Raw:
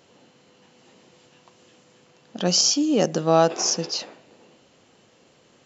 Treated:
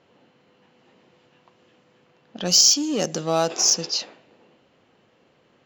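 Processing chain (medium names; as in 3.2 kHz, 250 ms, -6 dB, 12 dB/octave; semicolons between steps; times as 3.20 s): in parallel at -4.5 dB: hard clipper -22.5 dBFS, distortion -5 dB; on the sum: level-controlled noise filter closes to 2 kHz, open at -15 dBFS; treble shelf 3.2 kHz +11 dB; Chebyshev shaper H 5 -30 dB, 7 -28 dB, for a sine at 5 dBFS; trim -6 dB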